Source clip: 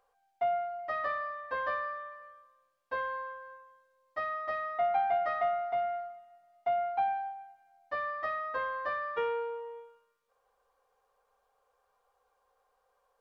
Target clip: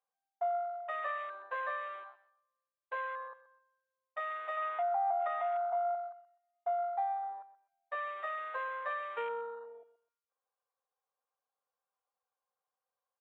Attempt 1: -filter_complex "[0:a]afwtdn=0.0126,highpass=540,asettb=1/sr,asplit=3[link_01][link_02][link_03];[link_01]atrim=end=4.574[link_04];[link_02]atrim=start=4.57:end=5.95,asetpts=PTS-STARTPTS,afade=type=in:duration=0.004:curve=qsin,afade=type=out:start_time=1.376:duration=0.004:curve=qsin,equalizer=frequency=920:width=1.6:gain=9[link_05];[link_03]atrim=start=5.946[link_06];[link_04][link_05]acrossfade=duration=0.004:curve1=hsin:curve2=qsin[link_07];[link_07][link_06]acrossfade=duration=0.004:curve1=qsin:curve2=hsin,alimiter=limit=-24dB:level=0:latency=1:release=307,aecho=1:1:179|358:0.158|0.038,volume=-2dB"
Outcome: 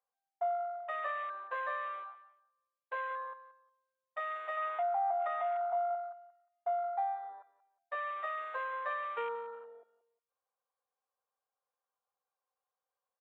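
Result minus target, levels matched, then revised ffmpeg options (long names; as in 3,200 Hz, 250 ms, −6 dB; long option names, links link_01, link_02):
echo 53 ms late
-filter_complex "[0:a]afwtdn=0.0126,highpass=540,asettb=1/sr,asplit=3[link_01][link_02][link_03];[link_01]atrim=end=4.574[link_04];[link_02]atrim=start=4.57:end=5.95,asetpts=PTS-STARTPTS,afade=type=in:duration=0.004:curve=qsin,afade=type=out:start_time=1.376:duration=0.004:curve=qsin,equalizer=frequency=920:width=1.6:gain=9[link_05];[link_03]atrim=start=5.946[link_06];[link_04][link_05]acrossfade=duration=0.004:curve1=hsin:curve2=qsin[link_07];[link_07][link_06]acrossfade=duration=0.004:curve1=qsin:curve2=hsin,alimiter=limit=-24dB:level=0:latency=1:release=307,aecho=1:1:126|252:0.158|0.038,volume=-2dB"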